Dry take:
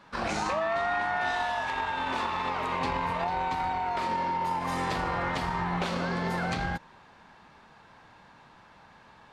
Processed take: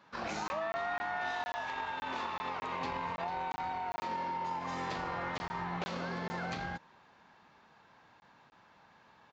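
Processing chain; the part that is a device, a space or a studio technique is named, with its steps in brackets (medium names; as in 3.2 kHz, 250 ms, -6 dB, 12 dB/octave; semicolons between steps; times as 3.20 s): call with lost packets (high-pass 120 Hz 6 dB/octave; resampled via 16 kHz; lost packets of 20 ms random); trim -7 dB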